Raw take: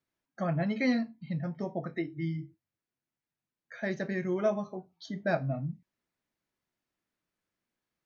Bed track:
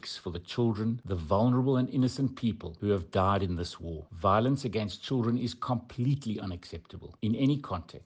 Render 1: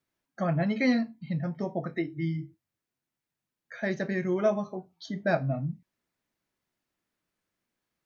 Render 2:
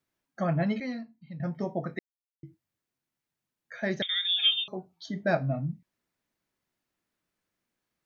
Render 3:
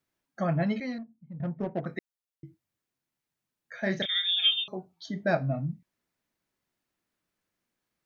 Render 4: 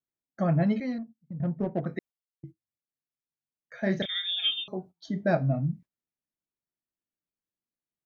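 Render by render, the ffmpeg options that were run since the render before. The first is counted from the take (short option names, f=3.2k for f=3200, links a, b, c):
-af "volume=3dB"
-filter_complex "[0:a]asettb=1/sr,asplit=3[a][b][c];[a]atrim=end=4.024[d];[b]atrim=start=4.02:end=4.68,asetpts=PTS-STARTPTS,afade=t=in:d=0.004:c=qsin,afade=t=out:st=0.656:d=0.004:c=qsin,lowpass=f=3.2k:t=q:w=0.5098,lowpass=f=3.2k:t=q:w=0.6013,lowpass=f=3.2k:t=q:w=0.9,lowpass=f=3.2k:t=q:w=2.563,afreqshift=-3800[e];[c]atrim=start=4.676[f];[d][e]acrossfade=d=0.004:c1=hsin:c2=qsin[g];[g][f]acrossfade=d=0.004:c1=qsin:c2=hsin,asplit=5[h][i][j][k][l];[h]atrim=end=0.802[m];[i]atrim=start=0.798:end=1.402,asetpts=PTS-STARTPTS,volume=-11dB[n];[j]atrim=start=1.398:end=1.99,asetpts=PTS-STARTPTS,afade=t=out:st=0.588:d=0.004:c=hsin[o];[k]atrim=start=1.99:end=2.43,asetpts=PTS-STARTPTS,volume=0[p];[l]atrim=start=2.43,asetpts=PTS-STARTPTS,afade=t=in:d=0.004:c=hsin[q];[m][n]acrossfade=d=0.004:c1=hsin:c2=hsin[r];[o][p][q]concat=n=3:v=0:a=1[s];[r][s]acrossfade=d=0.004:c1=hsin:c2=hsin"
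-filter_complex "[0:a]asettb=1/sr,asplit=3[a][b][c];[a]atrim=end=0.984[d];[b]atrim=start=0.98:end=1.86,asetpts=PTS-STARTPTS,afade=t=in:d=0.004:c=qsin,afade=t=out:st=0.876:d=0.004:c=qsin,adynamicsmooth=sensitivity=2.5:basefreq=540[e];[c]atrim=start=1.856[f];[d][e]acrossfade=d=0.004:c1=hsin:c2=qsin[g];[g][f]acrossfade=d=0.004:c1=qsin:c2=hsin,asettb=1/sr,asplit=3[h][i][j];[h]atrim=end=3.804[k];[i]atrim=start=3.8:end=4.44,asetpts=PTS-STARTPTS,afade=t=in:d=0.004:c=qsin,afade=t=out:st=0.636:d=0.004:c=qsin,asplit=2[l][m];[m]adelay=31,volume=-7dB[n];[l][n]amix=inputs=2:normalize=0,atrim=end_sample=28224[o];[j]atrim=start=4.436[p];[k][o]acrossfade=d=0.004:c1=hsin:c2=qsin[q];[q][p]acrossfade=d=0.004:c1=qsin:c2=hsin"
-af "agate=range=-17dB:threshold=-48dB:ratio=16:detection=peak,tiltshelf=f=800:g=4"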